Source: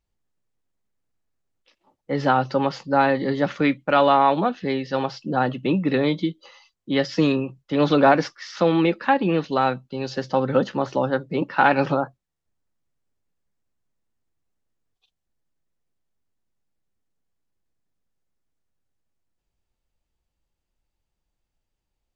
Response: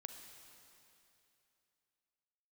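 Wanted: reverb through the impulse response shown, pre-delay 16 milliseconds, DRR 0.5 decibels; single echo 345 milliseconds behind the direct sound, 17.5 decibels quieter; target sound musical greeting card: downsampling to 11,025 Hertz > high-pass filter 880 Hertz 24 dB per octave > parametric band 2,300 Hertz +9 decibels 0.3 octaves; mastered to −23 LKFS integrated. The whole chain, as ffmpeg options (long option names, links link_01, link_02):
-filter_complex "[0:a]aecho=1:1:345:0.133,asplit=2[link_01][link_02];[1:a]atrim=start_sample=2205,adelay=16[link_03];[link_02][link_03]afir=irnorm=-1:irlink=0,volume=4dB[link_04];[link_01][link_04]amix=inputs=2:normalize=0,aresample=11025,aresample=44100,highpass=frequency=880:width=0.5412,highpass=frequency=880:width=1.3066,equalizer=frequency=2300:width_type=o:width=0.3:gain=9,volume=1dB"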